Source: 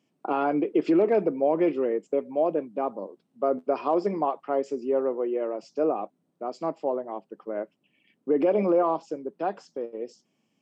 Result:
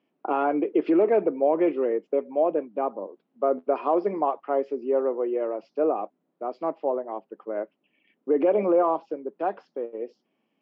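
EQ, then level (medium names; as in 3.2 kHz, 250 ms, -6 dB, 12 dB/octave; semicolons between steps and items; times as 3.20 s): band-pass 280–3600 Hz; distance through air 190 m; +2.5 dB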